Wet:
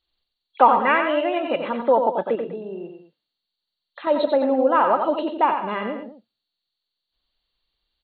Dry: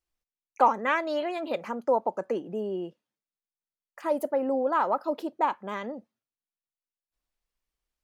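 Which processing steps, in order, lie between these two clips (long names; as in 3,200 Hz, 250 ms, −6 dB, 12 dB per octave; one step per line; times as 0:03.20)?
hearing-aid frequency compression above 2,700 Hz 4 to 1
0:02.35–0:04.07: downward compressor 4 to 1, threshold −39 dBFS, peak gain reduction 9.5 dB
multi-tap delay 90/116/134/203 ms −6.5/−18/−17/−14.5 dB
level +6.5 dB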